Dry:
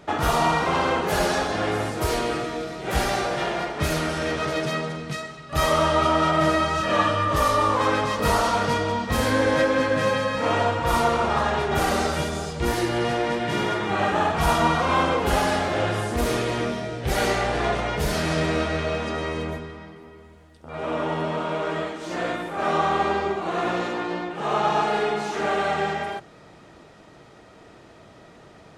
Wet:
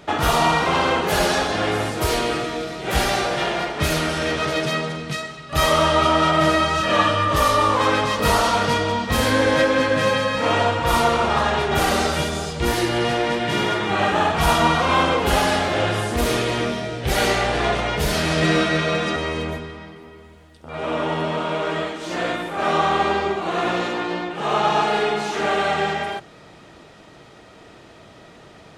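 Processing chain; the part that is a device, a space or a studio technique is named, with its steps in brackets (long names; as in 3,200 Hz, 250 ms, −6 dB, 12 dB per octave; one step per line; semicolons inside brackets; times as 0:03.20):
0:18.42–0:19.16: comb filter 5.8 ms, depth 90%
presence and air boost (parametric band 3,200 Hz +4 dB 1.2 octaves; high-shelf EQ 9,100 Hz +3.5 dB)
level +2.5 dB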